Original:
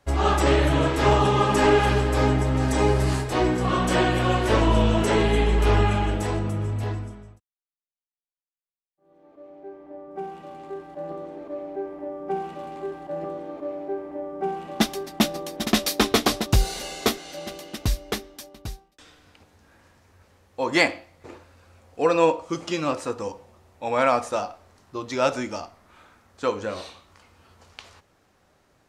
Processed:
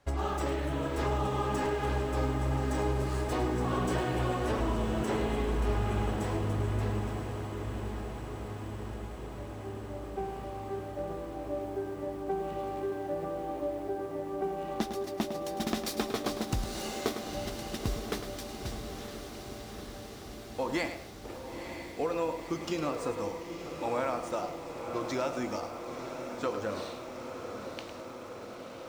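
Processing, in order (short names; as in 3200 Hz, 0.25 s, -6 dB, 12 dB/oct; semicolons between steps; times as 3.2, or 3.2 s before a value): median filter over 3 samples; dynamic EQ 3100 Hz, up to -4 dB, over -41 dBFS, Q 0.7; compressor, threshold -26 dBFS, peak gain reduction 12 dB; on a send: diffused feedback echo 0.958 s, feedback 75%, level -8 dB; on the sum: lo-fi delay 0.105 s, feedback 35%, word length 8-bit, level -10 dB; gain -3 dB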